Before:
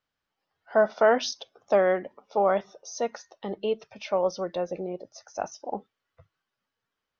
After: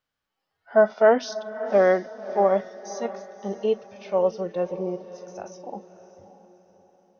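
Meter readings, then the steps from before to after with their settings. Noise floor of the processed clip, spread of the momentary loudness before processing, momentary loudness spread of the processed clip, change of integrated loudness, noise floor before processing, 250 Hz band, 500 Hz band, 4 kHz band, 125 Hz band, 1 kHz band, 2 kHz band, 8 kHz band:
-83 dBFS, 16 LU, 20 LU, +3.5 dB, -85 dBFS, +4.0 dB, +3.5 dB, -4.5 dB, +4.5 dB, +1.0 dB, +1.5 dB, no reading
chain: harmonic-percussive split percussive -14 dB; echo that smears into a reverb 592 ms, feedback 40%, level -14 dB; trim +4.5 dB

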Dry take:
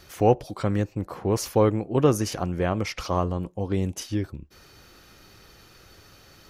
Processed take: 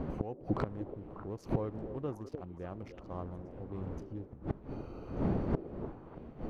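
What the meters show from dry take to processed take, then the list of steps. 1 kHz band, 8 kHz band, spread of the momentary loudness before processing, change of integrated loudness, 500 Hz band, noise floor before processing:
-15.5 dB, under -30 dB, 9 LU, -14.0 dB, -15.0 dB, -53 dBFS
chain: local Wiener filter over 25 samples; wind noise 330 Hz -33 dBFS; treble shelf 2.9 kHz -11.5 dB; level rider gain up to 8 dB; inverted gate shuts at -20 dBFS, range -26 dB; on a send: repeats whose band climbs or falls 297 ms, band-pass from 410 Hz, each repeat 1.4 oct, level -7.5 dB; on the sum: trim +2 dB

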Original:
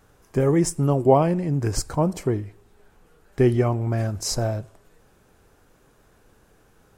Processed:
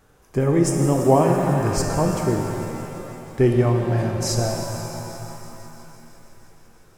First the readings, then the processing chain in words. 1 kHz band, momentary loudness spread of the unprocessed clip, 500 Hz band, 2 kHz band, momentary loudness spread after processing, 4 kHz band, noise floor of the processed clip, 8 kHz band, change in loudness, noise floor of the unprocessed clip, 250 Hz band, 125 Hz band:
+3.0 dB, 11 LU, +2.0 dB, +4.5 dB, 17 LU, +2.0 dB, -54 dBFS, +2.5 dB, +1.5 dB, -59 dBFS, +2.5 dB, +2.0 dB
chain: thinning echo 167 ms, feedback 81%, level -17 dB; pitch-shifted reverb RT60 3.1 s, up +7 st, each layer -8 dB, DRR 2.5 dB

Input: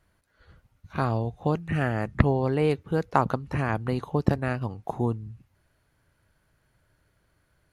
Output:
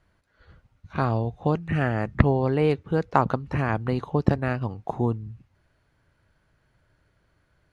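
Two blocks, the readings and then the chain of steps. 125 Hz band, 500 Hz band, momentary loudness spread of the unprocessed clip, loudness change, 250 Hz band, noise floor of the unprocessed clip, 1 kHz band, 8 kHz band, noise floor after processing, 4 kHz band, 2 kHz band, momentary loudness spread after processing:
+2.0 dB, +2.0 dB, 7 LU, +2.0 dB, +2.0 dB, -70 dBFS, +1.5 dB, no reading, -69 dBFS, +0.5 dB, +1.5 dB, 7 LU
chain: distance through air 63 m; trim +2 dB

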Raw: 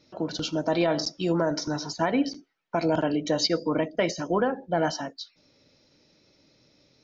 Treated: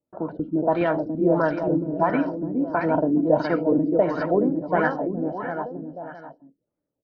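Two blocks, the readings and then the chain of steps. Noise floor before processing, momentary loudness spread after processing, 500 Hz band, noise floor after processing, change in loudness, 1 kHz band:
-65 dBFS, 12 LU, +5.0 dB, -84 dBFS, +3.5 dB, +5.0 dB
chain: gate -55 dBFS, range -23 dB; level-controlled noise filter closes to 920 Hz, open at -19.5 dBFS; bouncing-ball echo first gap 420 ms, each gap 0.8×, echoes 5; vibrato 0.47 Hz 9.8 cents; LFO low-pass sine 1.5 Hz 270–1700 Hz

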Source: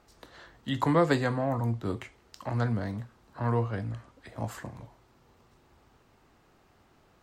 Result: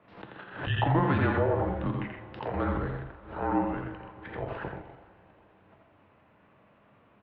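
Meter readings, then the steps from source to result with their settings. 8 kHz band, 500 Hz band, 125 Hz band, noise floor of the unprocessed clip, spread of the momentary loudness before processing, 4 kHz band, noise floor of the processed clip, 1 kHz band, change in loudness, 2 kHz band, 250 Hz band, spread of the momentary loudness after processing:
under -25 dB, 0.0 dB, -0.5 dB, -64 dBFS, 19 LU, 0.0 dB, -62 dBFS, +2.5 dB, 0.0 dB, +2.5 dB, +0.5 dB, 17 LU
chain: level held to a coarse grid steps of 10 dB; two-slope reverb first 0.31 s, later 3.9 s, from -17 dB, DRR 9 dB; peak limiter -25 dBFS, peak gain reduction 9.5 dB; mistuned SSB -160 Hz 260–3100 Hz; loudspeakers at several distances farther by 29 m -5 dB, 44 m -8 dB; swell ahead of each attack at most 100 dB/s; trim +8.5 dB

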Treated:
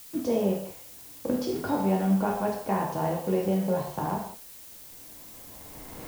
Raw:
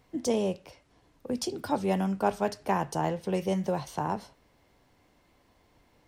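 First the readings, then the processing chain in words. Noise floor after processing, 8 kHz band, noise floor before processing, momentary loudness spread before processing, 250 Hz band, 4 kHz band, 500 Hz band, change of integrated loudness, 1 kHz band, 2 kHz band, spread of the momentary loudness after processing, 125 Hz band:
-47 dBFS, -0.5 dB, -66 dBFS, 6 LU, +4.0 dB, -2.5 dB, +2.0 dB, +2.5 dB, +0.5 dB, -0.5 dB, 18 LU, +3.5 dB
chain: recorder AGC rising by 12 dB/s; in parallel at -6 dB: bit crusher 6-bit; on the sum: tape spacing loss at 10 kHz 23 dB; gated-style reverb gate 230 ms falling, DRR -1 dB; added noise blue -42 dBFS; trim -5 dB

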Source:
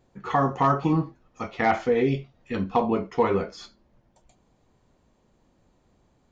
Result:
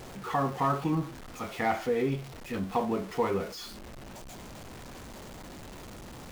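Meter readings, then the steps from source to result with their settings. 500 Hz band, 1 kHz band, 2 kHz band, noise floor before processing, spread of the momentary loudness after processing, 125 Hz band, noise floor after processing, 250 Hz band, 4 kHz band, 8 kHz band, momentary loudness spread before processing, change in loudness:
-6.0 dB, -6.0 dB, -5.0 dB, -66 dBFS, 17 LU, -5.5 dB, -45 dBFS, -5.5 dB, 0.0 dB, no reading, 14 LU, -6.0 dB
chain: jump at every zero crossing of -32 dBFS; trim -7 dB

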